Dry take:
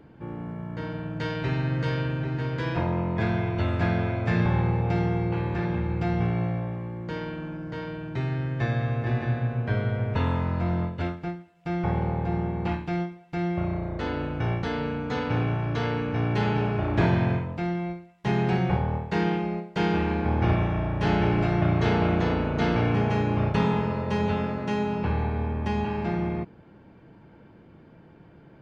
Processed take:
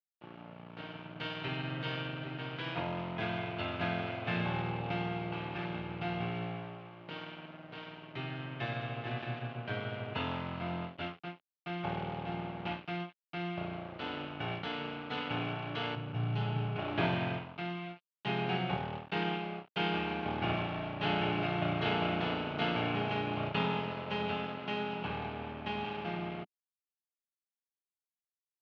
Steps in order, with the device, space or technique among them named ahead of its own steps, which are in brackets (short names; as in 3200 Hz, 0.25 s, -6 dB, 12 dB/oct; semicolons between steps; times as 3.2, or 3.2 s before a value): 15.95–16.76 graphic EQ 125/250/500/1000/2000/4000 Hz +10/-8/-5/-4/-10/-6 dB; blown loudspeaker (crossover distortion -37 dBFS; speaker cabinet 220–3900 Hz, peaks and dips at 220 Hz -7 dB, 340 Hz -6 dB, 490 Hz -9 dB, 980 Hz -5 dB, 1800 Hz -6 dB, 2900 Hz +7 dB); gain -1.5 dB